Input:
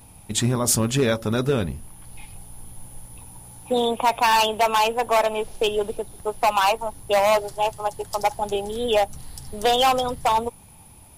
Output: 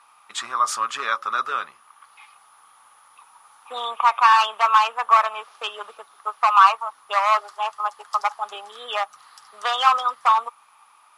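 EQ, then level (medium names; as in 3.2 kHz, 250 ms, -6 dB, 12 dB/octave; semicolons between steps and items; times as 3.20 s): resonant high-pass 1.2 kHz, resonance Q 10; distance through air 74 m; -2.0 dB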